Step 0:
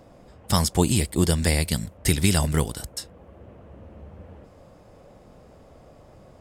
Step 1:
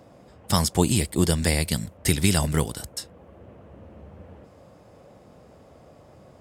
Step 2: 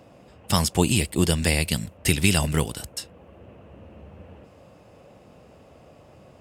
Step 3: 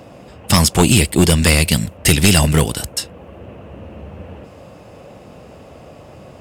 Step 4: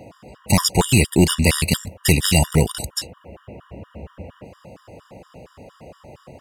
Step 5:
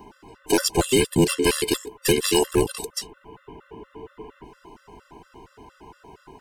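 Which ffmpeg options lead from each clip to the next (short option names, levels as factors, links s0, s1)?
-af "highpass=72"
-af "equalizer=f=2700:w=4.4:g=9"
-af "aeval=exprs='0.668*sin(PI/2*2.24*val(0)/0.668)':c=same"
-af "afftfilt=real='re*gt(sin(2*PI*4.3*pts/sr)*(1-2*mod(floor(b*sr/1024/960),2)),0)':imag='im*gt(sin(2*PI*4.3*pts/sr)*(1-2*mod(floor(b*sr/1024/960),2)),0)':win_size=1024:overlap=0.75,volume=0.891"
-af "afftfilt=real='real(if(between(b,1,1008),(2*floor((b-1)/24)+1)*24-b,b),0)':imag='imag(if(between(b,1,1008),(2*floor((b-1)/24)+1)*24-b,b),0)*if(between(b,1,1008),-1,1)':win_size=2048:overlap=0.75,volume=0.631"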